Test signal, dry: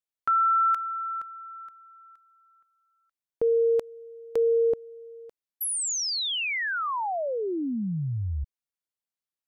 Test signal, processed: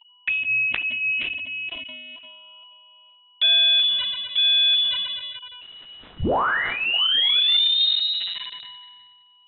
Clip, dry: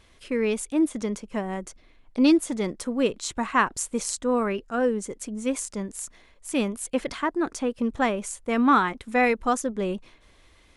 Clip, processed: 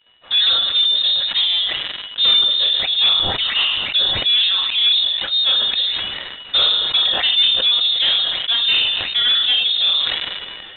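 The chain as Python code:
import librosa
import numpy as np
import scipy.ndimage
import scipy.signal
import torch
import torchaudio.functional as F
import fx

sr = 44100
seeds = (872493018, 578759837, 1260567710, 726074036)

y = scipy.signal.sosfilt(scipy.signal.butter(2, 320.0, 'highpass', fs=sr, output='sos'), x)
y = fx.high_shelf(y, sr, hz=2500.0, db=-10.0)
y = fx.rider(y, sr, range_db=4, speed_s=0.5)
y = fx.rev_double_slope(y, sr, seeds[0], early_s=0.46, late_s=1.9, knee_db=-21, drr_db=-0.5)
y = y + 10.0 ** (-49.0 / 20.0) * np.sin(2.0 * np.pi * 970.0 * np.arange(len(y)) / sr)
y = fx.env_flanger(y, sr, rest_ms=11.9, full_db=-25.5)
y = fx.leveller(y, sr, passes=3)
y = fx.freq_invert(y, sr, carrier_hz=3900)
y = fx.sustainer(y, sr, db_per_s=28.0)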